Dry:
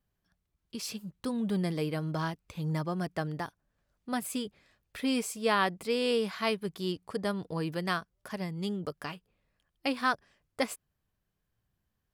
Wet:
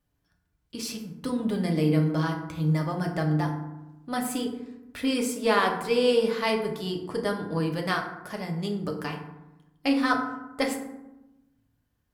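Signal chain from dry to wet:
harmonic generator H 6 −32 dB, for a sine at −13 dBFS
feedback delay network reverb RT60 0.95 s, low-frequency decay 1.45×, high-frequency decay 0.45×, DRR 1 dB
level +2 dB

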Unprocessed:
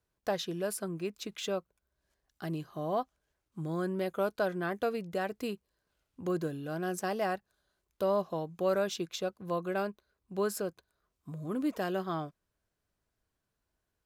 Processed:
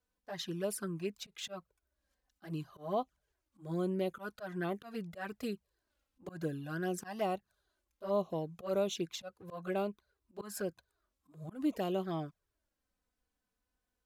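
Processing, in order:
dynamic equaliser 1,600 Hz, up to +5 dB, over −50 dBFS, Q 2.3
volume swells 151 ms
flanger swept by the level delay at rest 4 ms, full sweep at −29 dBFS

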